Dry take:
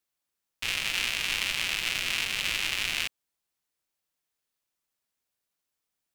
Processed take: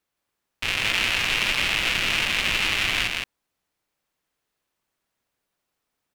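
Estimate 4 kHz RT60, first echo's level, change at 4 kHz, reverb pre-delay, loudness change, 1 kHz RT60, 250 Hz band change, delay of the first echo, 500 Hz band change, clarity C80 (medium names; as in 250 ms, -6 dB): no reverb, -3.0 dB, +5.5 dB, no reverb, +6.0 dB, no reverb, +11.0 dB, 165 ms, +10.5 dB, no reverb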